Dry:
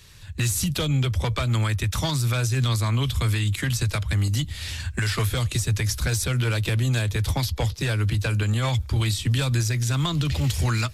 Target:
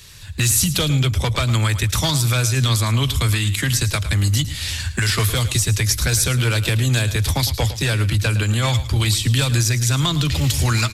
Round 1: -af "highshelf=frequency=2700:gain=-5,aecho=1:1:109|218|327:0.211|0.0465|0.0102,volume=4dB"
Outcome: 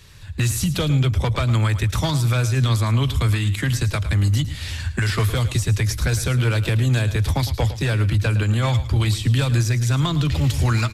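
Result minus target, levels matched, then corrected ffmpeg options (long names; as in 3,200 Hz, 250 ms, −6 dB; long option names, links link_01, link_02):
4,000 Hz band −5.5 dB
-af "highshelf=frequency=2700:gain=6,aecho=1:1:109|218|327:0.211|0.0465|0.0102,volume=4dB"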